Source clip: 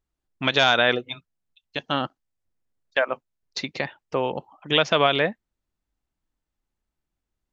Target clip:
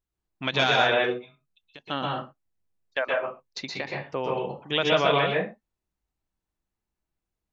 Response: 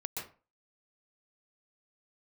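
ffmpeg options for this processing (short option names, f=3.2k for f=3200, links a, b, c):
-filter_complex "[0:a]asplit=3[a][b][c];[a]afade=t=out:st=1.08:d=0.02[d];[b]acompressor=threshold=-42dB:ratio=3,afade=t=in:st=1.08:d=0.02,afade=t=out:st=1.85:d=0.02[e];[c]afade=t=in:st=1.85:d=0.02[f];[d][e][f]amix=inputs=3:normalize=0[g];[1:a]atrim=start_sample=2205,afade=t=out:st=0.32:d=0.01,atrim=end_sample=14553[h];[g][h]afir=irnorm=-1:irlink=0,volume=-3dB"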